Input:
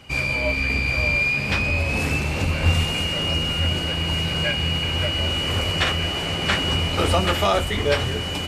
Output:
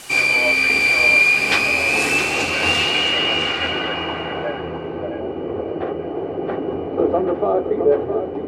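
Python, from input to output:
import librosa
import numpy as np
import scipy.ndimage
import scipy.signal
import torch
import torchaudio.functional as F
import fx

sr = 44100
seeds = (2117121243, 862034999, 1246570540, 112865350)

p1 = scipy.signal.sosfilt(scipy.signal.butter(2, 310.0, 'highpass', fs=sr, output='sos'), x)
p2 = p1 + 0.38 * np.pad(p1, (int(2.6 * sr / 1000.0), 0))[:len(p1)]
p3 = fx.quant_dither(p2, sr, seeds[0], bits=6, dither='triangular')
p4 = p2 + (p3 * 10.0 ** (-4.5 / 20.0))
p5 = fx.filter_sweep_lowpass(p4, sr, from_hz=9700.0, to_hz=470.0, start_s=2.2, end_s=4.83, q=1.2)
p6 = p5 + 10.0 ** (-8.5 / 20.0) * np.pad(p5, (int(664 * sr / 1000.0), 0))[:len(p5)]
y = p6 * 10.0 ** (2.0 / 20.0)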